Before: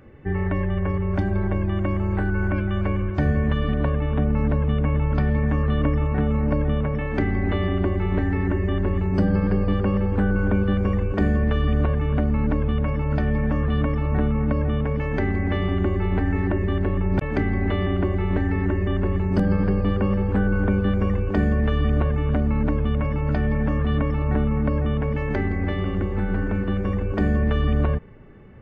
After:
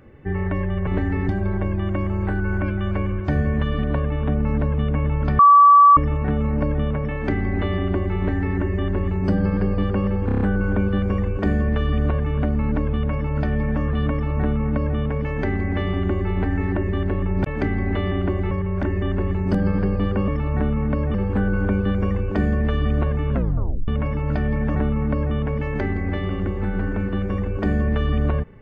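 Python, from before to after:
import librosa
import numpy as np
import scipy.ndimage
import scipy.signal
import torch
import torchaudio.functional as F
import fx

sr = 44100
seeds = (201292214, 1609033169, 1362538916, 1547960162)

y = fx.edit(x, sr, fx.swap(start_s=0.87, length_s=0.32, other_s=18.26, other_length_s=0.42),
    fx.bleep(start_s=5.29, length_s=0.58, hz=1150.0, db=-7.0),
    fx.stutter(start_s=10.16, slice_s=0.03, count=6),
    fx.duplicate(start_s=13.86, length_s=0.86, to_s=20.13),
    fx.tape_stop(start_s=22.31, length_s=0.56),
    fx.cut(start_s=23.74, length_s=0.56), tone=tone)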